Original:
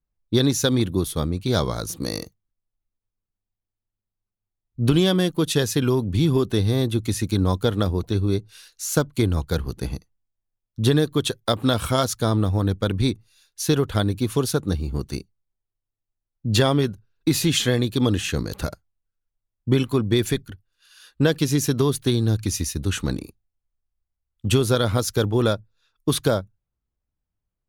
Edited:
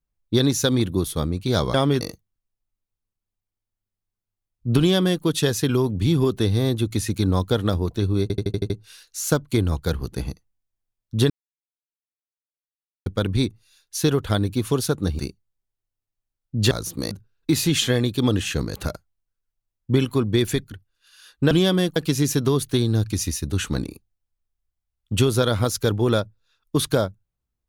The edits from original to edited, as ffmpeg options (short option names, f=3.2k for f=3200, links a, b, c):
-filter_complex "[0:a]asplit=16[a][b][c][d][e][f][g][h][i][j][k][l][m][n][o][p];[a]atrim=end=1.742[q];[b]atrim=start=16.618:end=16.892[r];[c]atrim=start=2.138:end=8.432[s];[d]atrim=start=8.348:end=8.432[t];[e]atrim=start=8.348:end=8.432[u];[f]atrim=start=8.348:end=8.432[v];[g]atrim=start=8.348:end=8.432[w];[h]atrim=start=8.348:end=8.432[x];[i]atrim=start=8.348:end=10.95,asetpts=PTS-STARTPTS,afade=t=out:st=2.598:d=0.004:c=hsin[y];[j]atrim=start=10.95:end=12.71,asetpts=PTS-STARTPTS,volume=0[z];[k]atrim=start=12.71:end=14.842,asetpts=PTS-STARTPTS,afade=t=in:d=0.004:c=hsin[aa];[l]atrim=start=15.098:end=16.622[ab];[m]atrim=start=1.738:end=2.142[ac];[n]atrim=start=16.888:end=21.292[ad];[o]atrim=start=4.918:end=5.372[ae];[p]atrim=start=21.288[af];[q][r]acrossfade=d=0.004:c1=hsin:c2=hsin[ag];[ag][s]acrossfade=d=0.004:c1=hsin:c2=hsin[ah];[ah][t]acrossfade=d=0.004:c1=hsin:c2=hsin[ai];[ai][u]acrossfade=d=0.004:c1=hsin:c2=hsin[aj];[aj][v]acrossfade=d=0.004:c1=hsin:c2=hsin[ak];[ak][w]acrossfade=d=0.004:c1=hsin:c2=hsin[al];[al][x]acrossfade=d=0.004:c1=hsin:c2=hsin[am];[y][z][aa]concat=n=3:v=0:a=1[an];[am][an]acrossfade=d=0.004:c1=hsin:c2=hsin[ao];[ao][ab]acrossfade=d=0.004:c1=hsin:c2=hsin[ap];[ap][ac]acrossfade=d=0.004:c1=hsin:c2=hsin[aq];[aq][ad]acrossfade=d=0.004:c1=hsin:c2=hsin[ar];[ar][ae]acrossfade=d=0.004:c1=hsin:c2=hsin[as];[as][af]acrossfade=d=0.004:c1=hsin:c2=hsin"